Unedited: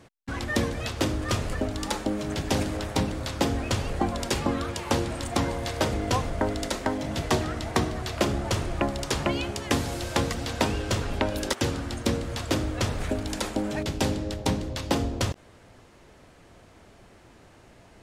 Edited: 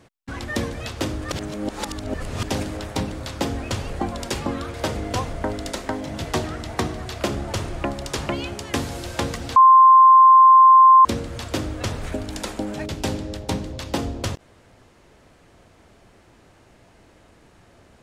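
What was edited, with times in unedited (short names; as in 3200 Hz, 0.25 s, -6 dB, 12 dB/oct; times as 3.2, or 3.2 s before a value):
1.32–2.43 reverse
4.74–5.71 cut
10.53–12.02 bleep 1050 Hz -7 dBFS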